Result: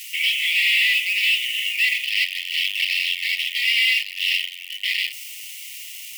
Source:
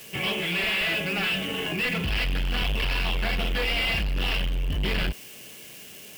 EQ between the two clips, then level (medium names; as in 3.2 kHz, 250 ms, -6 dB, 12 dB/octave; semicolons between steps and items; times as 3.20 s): brick-wall FIR high-pass 1.8 kHz; +8.5 dB